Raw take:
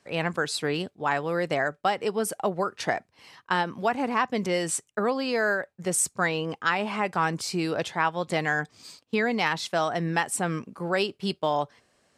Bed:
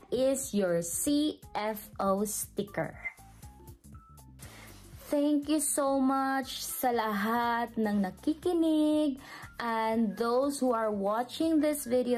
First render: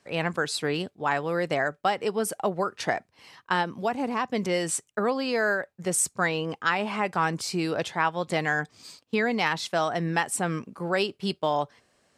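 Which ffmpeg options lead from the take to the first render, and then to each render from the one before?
-filter_complex "[0:a]asettb=1/sr,asplit=3[a][b][c];[a]atrim=end=3.654[d];[b]atrim=start=3.65:end=4.31,asetpts=PTS-STARTPTS,afade=t=in:d=0.004:c=qsin,afade=t=out:st=0.656:d=0.004:c=qsin,equalizer=f=1.6k:t=o:w=1.8:g=-5.5[e];[c]atrim=start=4.306[f];[d][e]acrossfade=d=0.004:c1=hsin:c2=qsin[g];[g][f]acrossfade=d=0.004:c1=qsin:c2=hsin"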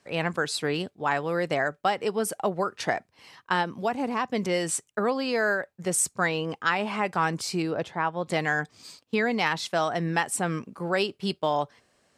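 -filter_complex "[0:a]asettb=1/sr,asplit=3[a][b][c];[a]atrim=end=7.624[d];[b]atrim=start=7.62:end=8.26,asetpts=PTS-STARTPTS,afade=t=in:d=0.004:c=qsin,afade=t=out:st=0.636:d=0.004:c=qsin,highshelf=f=2.2k:g=-12[e];[c]atrim=start=8.256[f];[d][e]acrossfade=d=0.004:c1=hsin:c2=qsin[g];[g][f]acrossfade=d=0.004:c1=qsin:c2=hsin"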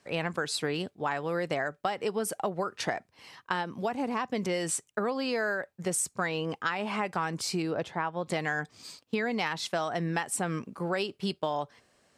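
-af "acompressor=threshold=-27dB:ratio=4"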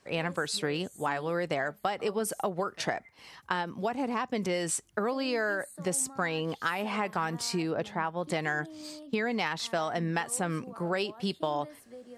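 -filter_complex "[1:a]volume=-19.5dB[a];[0:a][a]amix=inputs=2:normalize=0"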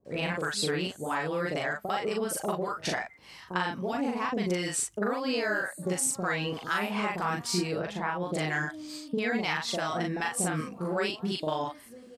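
-filter_complex "[0:a]asplit=2[a][b];[b]adelay=39,volume=-2dB[c];[a][c]amix=inputs=2:normalize=0,acrossover=split=670[d][e];[e]adelay=50[f];[d][f]amix=inputs=2:normalize=0"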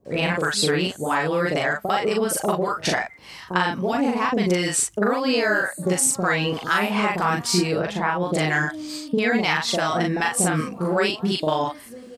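-af "volume=8.5dB"

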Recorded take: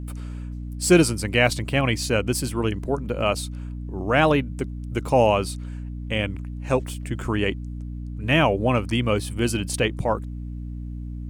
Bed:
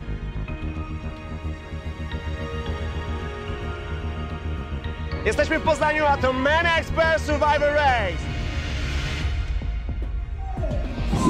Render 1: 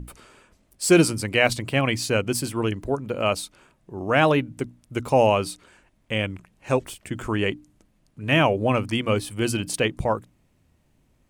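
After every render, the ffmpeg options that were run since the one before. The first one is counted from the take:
-af "bandreject=f=60:t=h:w=6,bandreject=f=120:t=h:w=6,bandreject=f=180:t=h:w=6,bandreject=f=240:t=h:w=6,bandreject=f=300:t=h:w=6"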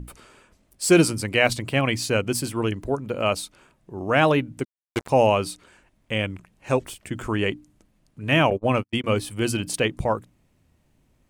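-filter_complex "[0:a]asplit=3[a][b][c];[a]afade=t=out:st=4.63:d=0.02[d];[b]acrusher=bits=3:mix=0:aa=0.5,afade=t=in:st=4.63:d=0.02,afade=t=out:st=5.08:d=0.02[e];[c]afade=t=in:st=5.08:d=0.02[f];[d][e][f]amix=inputs=3:normalize=0,asettb=1/sr,asplit=3[g][h][i];[g]atrim=end=8.504[j];[h]atrim=start=8.5:end=9.04,asetpts=PTS-STARTPTS,afade=t=in:d=0.004:c=qsin,afade=t=out:st=0.536:d=0.004:c=qsin,agate=range=-48dB:threshold=-25dB:ratio=16:release=100:detection=peak[k];[i]atrim=start=9.036[l];[j][k]acrossfade=d=0.004:c1=hsin:c2=qsin[m];[m][l]acrossfade=d=0.004:c1=qsin:c2=hsin"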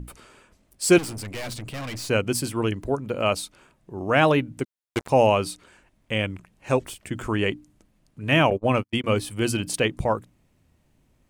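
-filter_complex "[0:a]asettb=1/sr,asplit=3[a][b][c];[a]atrim=end=0.984[d];[b]atrim=start=0.98:end=2.1,asetpts=PTS-STARTPTS,afade=t=in:d=0.004:c=qsin,afade=t=out:st=1.116:d=0.004:c=qsin,aeval=exprs='(tanh(35.5*val(0)+0.3)-tanh(0.3))/35.5':c=same[e];[c]atrim=start=2.096[f];[d][e]acrossfade=d=0.004:c1=hsin:c2=qsin[g];[g][f]acrossfade=d=0.004:c1=qsin:c2=hsin"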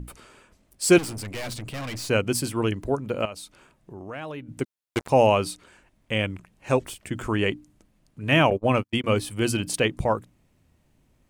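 -filter_complex "[0:a]asettb=1/sr,asplit=3[a][b][c];[a]atrim=end=3.254[d];[b]atrim=start=3.25:end=4.49,asetpts=PTS-STARTPTS,afade=t=in:d=0.004:c=qsin,afade=t=out:st=1.236:d=0.004:c=qsin,acompressor=threshold=-38dB:ratio=3:attack=3.2:release=140:knee=1:detection=peak[e];[c]atrim=start=4.486[f];[d][e]acrossfade=d=0.004:c1=hsin:c2=qsin[g];[g][f]acrossfade=d=0.004:c1=qsin:c2=hsin"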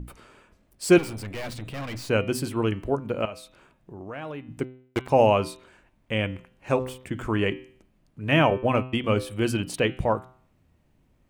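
-af "equalizer=f=8.7k:t=o:w=2.1:g=-7.5,bandreject=f=128.2:t=h:w=4,bandreject=f=256.4:t=h:w=4,bandreject=f=384.6:t=h:w=4,bandreject=f=512.8:t=h:w=4,bandreject=f=641:t=h:w=4,bandreject=f=769.2:t=h:w=4,bandreject=f=897.4:t=h:w=4,bandreject=f=1.0256k:t=h:w=4,bandreject=f=1.1538k:t=h:w=4,bandreject=f=1.282k:t=h:w=4,bandreject=f=1.4102k:t=h:w=4,bandreject=f=1.5384k:t=h:w=4,bandreject=f=1.6666k:t=h:w=4,bandreject=f=1.7948k:t=h:w=4,bandreject=f=1.923k:t=h:w=4,bandreject=f=2.0512k:t=h:w=4,bandreject=f=2.1794k:t=h:w=4,bandreject=f=2.3076k:t=h:w=4,bandreject=f=2.4358k:t=h:w=4,bandreject=f=2.564k:t=h:w=4,bandreject=f=2.6922k:t=h:w=4,bandreject=f=2.8204k:t=h:w=4,bandreject=f=2.9486k:t=h:w=4,bandreject=f=3.0768k:t=h:w=4,bandreject=f=3.205k:t=h:w=4,bandreject=f=3.3332k:t=h:w=4,bandreject=f=3.4614k:t=h:w=4,bandreject=f=3.5896k:t=h:w=4,bandreject=f=3.7178k:t=h:w=4,bandreject=f=3.846k:t=h:w=4,bandreject=f=3.9742k:t=h:w=4,bandreject=f=4.1024k:t=h:w=4"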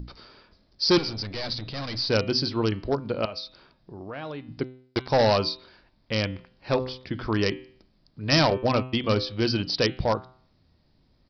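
-af "aresample=11025,asoftclip=type=hard:threshold=-15.5dB,aresample=44100,aexciter=amount=10.5:drive=3.7:freq=4.1k"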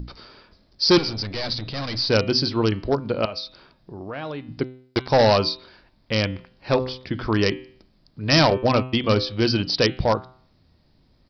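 -af "volume=4dB,alimiter=limit=-3dB:level=0:latency=1"

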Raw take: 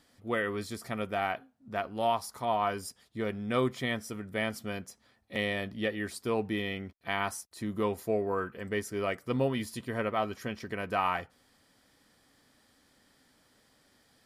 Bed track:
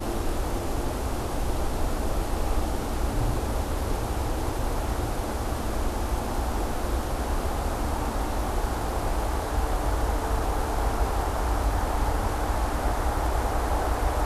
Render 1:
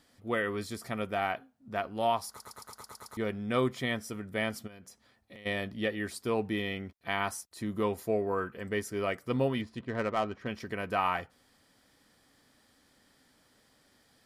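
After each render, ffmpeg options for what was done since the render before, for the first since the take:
-filter_complex "[0:a]asplit=3[a][b][c];[a]afade=t=out:st=4.66:d=0.02[d];[b]acompressor=threshold=-46dB:ratio=12:attack=3.2:release=140:knee=1:detection=peak,afade=t=in:st=4.66:d=0.02,afade=t=out:st=5.45:d=0.02[e];[c]afade=t=in:st=5.45:d=0.02[f];[d][e][f]amix=inputs=3:normalize=0,asettb=1/sr,asplit=3[g][h][i];[g]atrim=end=9.614[j];[h]atrim=start=9.61:end=10.47,asetpts=PTS-STARTPTS,afade=t=in:d=0.004:c=qsin,afade=t=out:st=0.856:d=0.004:c=qsin,adynamicsmooth=sensitivity=7:basefreq=1.9k[k];[i]atrim=start=10.466[l];[j][k]acrossfade=d=0.004:c1=hsin:c2=qsin[m];[m][l]acrossfade=d=0.004:c1=qsin:c2=hsin,asplit=9[n][o][p][q][r][s][t][u][v];[n]atrim=end=2.402[w];[o]atrim=start=2.288:end=2.402[x];[p]atrim=start=2.288:end=2.402[y];[q]atrim=start=2.288:end=2.402[z];[r]atrim=start=2.288:end=2.402[aa];[s]atrim=start=2.288:end=2.402[ab];[t]atrim=start=2.288:end=2.402[ac];[u]atrim=start=2.288:end=2.402[ad];[v]atrim=start=3.168[ae];[w][x]acrossfade=d=0.004:c1=hsin:c2=hsin[af];[af][y]acrossfade=d=0.004:c1=hsin:c2=hsin[ag];[ag][z]acrossfade=d=0.004:c1=hsin:c2=hsin[ah];[ah][aa]acrossfade=d=0.004:c1=hsin:c2=hsin[ai];[ai][ab]acrossfade=d=0.004:c1=hsin:c2=hsin[aj];[aj][ac]acrossfade=d=0.004:c1=hsin:c2=hsin[ak];[ak][ad]acrossfade=d=0.004:c1=hsin:c2=hsin[al];[al][ae]acrossfade=d=0.004:c1=hsin:c2=hsin"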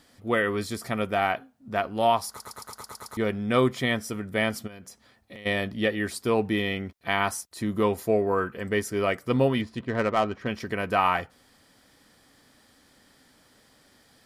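-af "volume=6.5dB"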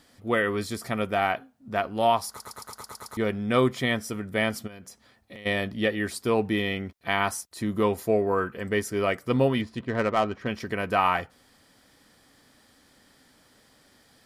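-af anull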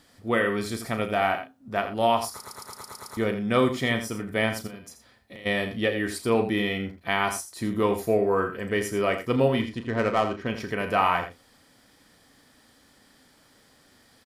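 -filter_complex "[0:a]asplit=2[a][b];[b]adelay=35,volume=-10dB[c];[a][c]amix=inputs=2:normalize=0,asplit=2[d][e];[e]aecho=0:1:83:0.316[f];[d][f]amix=inputs=2:normalize=0"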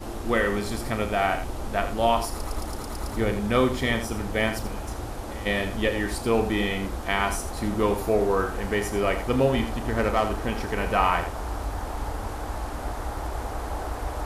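-filter_complex "[1:a]volume=-5.5dB[a];[0:a][a]amix=inputs=2:normalize=0"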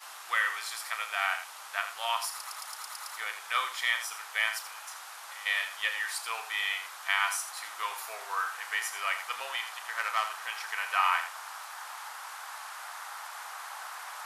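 -af "highpass=f=1.1k:w=0.5412,highpass=f=1.1k:w=1.3066"

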